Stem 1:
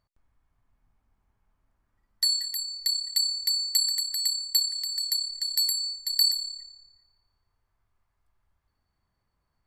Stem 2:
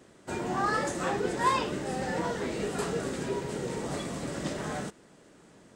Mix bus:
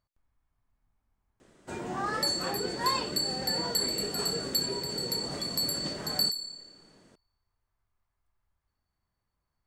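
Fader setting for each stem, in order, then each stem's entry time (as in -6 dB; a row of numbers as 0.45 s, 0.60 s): -5.5 dB, -4.0 dB; 0.00 s, 1.40 s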